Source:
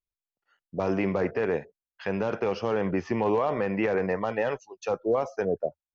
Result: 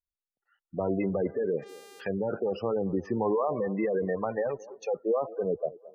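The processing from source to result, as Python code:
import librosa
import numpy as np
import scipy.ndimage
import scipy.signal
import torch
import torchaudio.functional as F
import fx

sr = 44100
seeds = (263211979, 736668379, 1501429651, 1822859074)

y = fx.dmg_buzz(x, sr, base_hz=400.0, harmonics=39, level_db=-50.0, tilt_db=-3, odd_only=False, at=(0.87, 2.15), fade=0.02)
y = fx.spec_gate(y, sr, threshold_db=-15, keep='strong')
y = fx.echo_wet_bandpass(y, sr, ms=222, feedback_pct=39, hz=550.0, wet_db=-18.5)
y = y * 10.0 ** (-1.5 / 20.0)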